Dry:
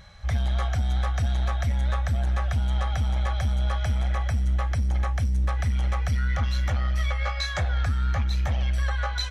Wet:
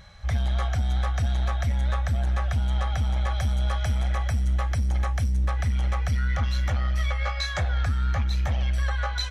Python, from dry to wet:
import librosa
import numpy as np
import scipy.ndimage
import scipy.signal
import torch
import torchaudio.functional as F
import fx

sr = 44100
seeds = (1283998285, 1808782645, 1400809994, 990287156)

y = fx.high_shelf(x, sr, hz=5700.0, db=5.0, at=(3.31, 5.32))